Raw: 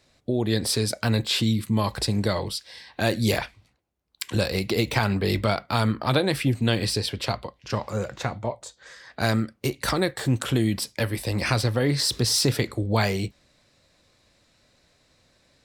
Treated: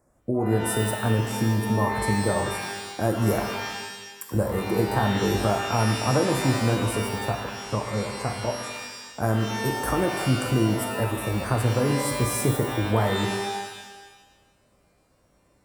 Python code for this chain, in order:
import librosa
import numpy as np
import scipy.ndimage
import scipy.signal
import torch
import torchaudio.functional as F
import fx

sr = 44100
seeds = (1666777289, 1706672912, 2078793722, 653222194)

y = scipy.signal.sosfilt(scipy.signal.cheby1(2, 1.0, [1100.0, 9400.0], 'bandstop', fs=sr, output='sos'), x)
y = fx.rev_shimmer(y, sr, seeds[0], rt60_s=1.1, semitones=12, shimmer_db=-2, drr_db=5.0)